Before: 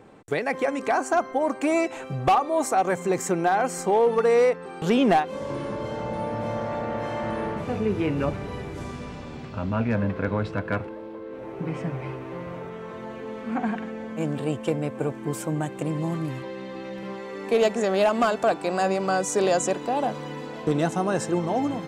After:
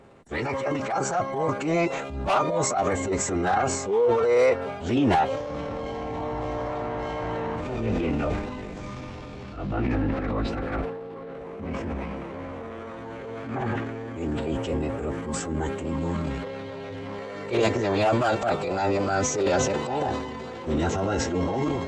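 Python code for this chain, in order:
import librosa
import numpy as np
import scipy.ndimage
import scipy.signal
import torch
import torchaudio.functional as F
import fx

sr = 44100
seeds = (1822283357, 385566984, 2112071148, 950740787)

y = fx.pitch_keep_formants(x, sr, semitones=-11.5)
y = fx.transient(y, sr, attack_db=-7, sustain_db=8)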